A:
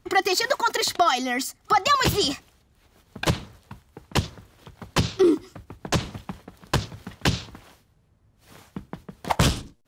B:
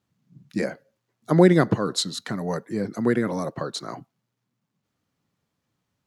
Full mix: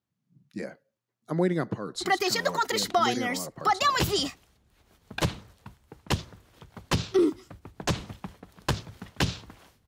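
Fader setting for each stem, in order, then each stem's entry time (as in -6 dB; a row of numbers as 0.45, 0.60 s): -4.0, -10.0 dB; 1.95, 0.00 s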